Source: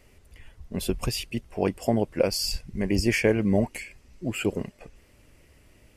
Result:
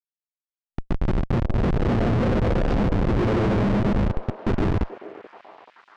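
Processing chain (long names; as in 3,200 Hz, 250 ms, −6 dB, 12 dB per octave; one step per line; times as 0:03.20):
every frequency bin delayed by itself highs late, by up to 353 ms
noise reduction from a noise print of the clip's start 8 dB
parametric band 66 Hz +6.5 dB 0.27 octaves
convolution reverb RT60 1.9 s, pre-delay 60 ms, DRR −2 dB
comparator with hysteresis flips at −21 dBFS
head-to-tape spacing loss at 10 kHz 29 dB
echo through a band-pass that steps 432 ms, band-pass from 520 Hz, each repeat 0.7 octaves, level −9 dB
level +5 dB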